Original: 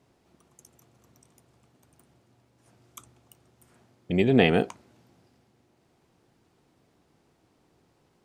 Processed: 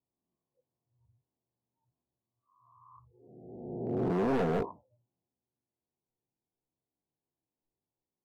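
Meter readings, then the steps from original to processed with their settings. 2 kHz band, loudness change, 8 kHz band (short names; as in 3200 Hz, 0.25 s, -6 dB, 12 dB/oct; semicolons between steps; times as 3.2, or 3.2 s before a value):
-14.0 dB, -8.5 dB, n/a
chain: spectral swells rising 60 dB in 1.67 s; steep low-pass 1100 Hz 96 dB/oct; spectral noise reduction 27 dB; hard clip -22 dBFS, distortion -5 dB; flange 0.89 Hz, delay 0.6 ms, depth 8 ms, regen -61%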